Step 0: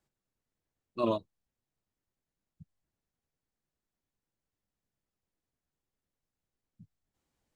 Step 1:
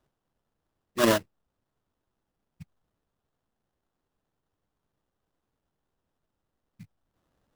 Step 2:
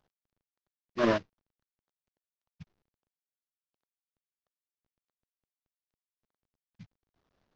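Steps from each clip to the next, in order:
sample-rate reducer 2300 Hz, jitter 20%; gain +7.5 dB
CVSD 32 kbps; gain -2.5 dB

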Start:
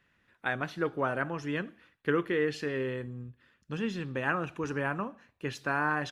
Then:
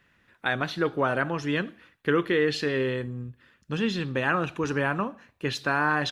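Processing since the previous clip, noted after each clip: dynamic EQ 3900 Hz, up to +8 dB, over -58 dBFS, Q 2.2; in parallel at 0 dB: limiter -21.5 dBFS, peak gain reduction 7 dB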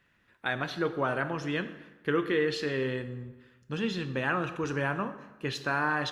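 plate-style reverb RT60 1.2 s, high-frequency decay 0.7×, DRR 10 dB; gain -4.5 dB

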